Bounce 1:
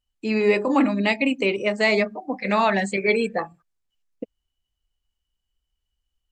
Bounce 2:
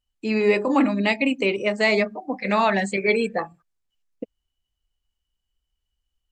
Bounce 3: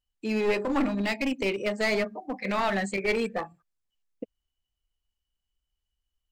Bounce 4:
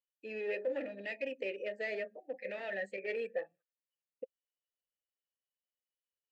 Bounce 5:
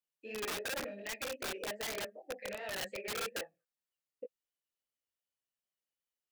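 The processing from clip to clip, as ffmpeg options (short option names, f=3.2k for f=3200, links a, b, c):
-af anull
-af "aeval=exprs='clip(val(0),-1,0.0841)':c=same,volume=-4.5dB"
-filter_complex "[0:a]asplit=3[a][b][c];[a]bandpass=f=530:t=q:w=8,volume=0dB[d];[b]bandpass=f=1.84k:t=q:w=8,volume=-6dB[e];[c]bandpass=f=2.48k:t=q:w=8,volume=-9dB[f];[d][e][f]amix=inputs=3:normalize=0"
-af "flanger=delay=18:depth=6.6:speed=2.6,aeval=exprs='(mod(59.6*val(0)+1,2)-1)/59.6':c=same,volume=2.5dB"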